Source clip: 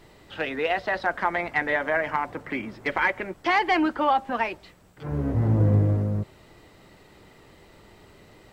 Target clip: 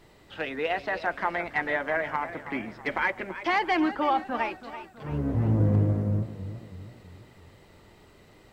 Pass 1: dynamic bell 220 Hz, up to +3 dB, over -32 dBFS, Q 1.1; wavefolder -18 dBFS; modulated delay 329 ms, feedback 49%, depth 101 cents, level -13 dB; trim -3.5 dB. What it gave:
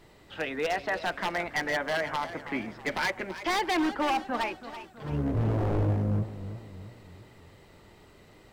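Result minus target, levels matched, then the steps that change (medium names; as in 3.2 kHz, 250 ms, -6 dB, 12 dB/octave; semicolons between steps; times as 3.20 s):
wavefolder: distortion +36 dB
change: wavefolder -9 dBFS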